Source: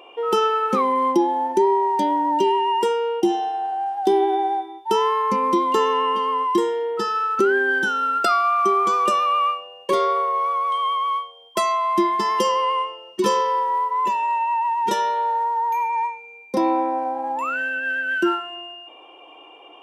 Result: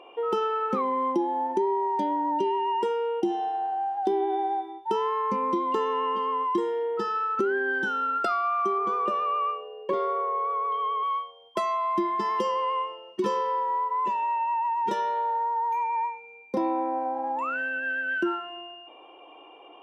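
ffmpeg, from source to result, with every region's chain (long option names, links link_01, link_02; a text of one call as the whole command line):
ffmpeg -i in.wav -filter_complex "[0:a]asettb=1/sr,asplit=3[link_01][link_02][link_03];[link_01]atrim=end=4.304[link_04];[link_02]atrim=start=4.3:end=4.73,asetpts=PTS-STARTPTS,afade=type=in:duration=0.004:curve=qsin,afade=type=out:start_time=0.426:duration=0.004:curve=qsin,highshelf=frequency=6600:gain=9,bandreject=frequency=6700:width=25[link_05];[link_03]atrim=start=4.726[link_06];[link_04][link_05]acrossfade=duration=0.004:curve1=hsin:curve2=qsin[link_07];[link_07][link_06]acrossfade=duration=0.004:curve1=qsin:curve2=hsin,asettb=1/sr,asplit=3[link_08][link_09][link_10];[link_08]atrim=end=8.784[link_11];[link_09]atrim=start=8.78:end=11.03,asetpts=PTS-STARTPTS,afade=type=in:duration=0.004:curve=qsin,afade=type=out:start_time=2.246:duration=0.004:curve=qsin,aemphasis=mode=reproduction:type=75kf,aeval=exprs='val(0)+0.0141*sin(2*PI*430*n/s)':channel_layout=same[link_12];[link_10]atrim=start=11.026[link_13];[link_11][link_12]acrossfade=duration=0.004:curve1=hsin:curve2=qsin[link_14];[link_14][link_13]acrossfade=duration=0.004:curve1=qsin:curve2=hsin,lowpass=frequency=1900:poles=1,acompressor=threshold=-24dB:ratio=2,volume=-2dB" out.wav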